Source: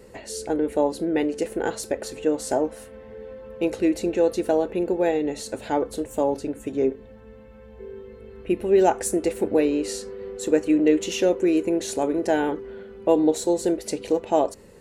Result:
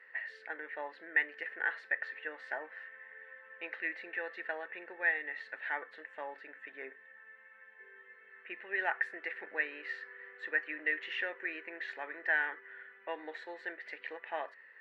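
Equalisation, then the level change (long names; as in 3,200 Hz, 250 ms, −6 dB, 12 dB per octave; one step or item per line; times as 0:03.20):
high-pass with resonance 1,800 Hz, resonance Q 10
high-frequency loss of the air 420 metres
head-to-tape spacing loss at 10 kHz 21 dB
0.0 dB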